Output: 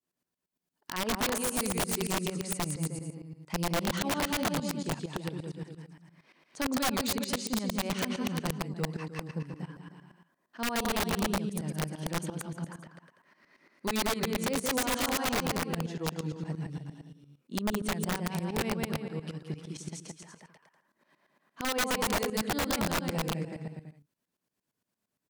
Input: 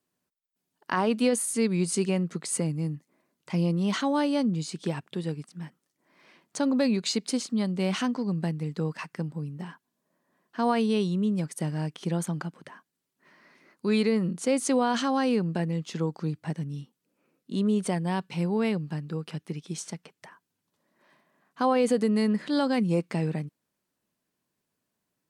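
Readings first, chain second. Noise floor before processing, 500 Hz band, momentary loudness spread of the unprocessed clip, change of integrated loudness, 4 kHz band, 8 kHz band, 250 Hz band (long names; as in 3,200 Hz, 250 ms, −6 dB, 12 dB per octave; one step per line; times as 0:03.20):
−82 dBFS, −6.0 dB, 12 LU, −4.5 dB, +2.0 dB, +0.5 dB, −7.0 dB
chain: bouncing-ball delay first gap 170 ms, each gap 0.8×, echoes 5
shaped tremolo saw up 8.7 Hz, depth 85%
wrap-around overflow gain 21 dB
level −2 dB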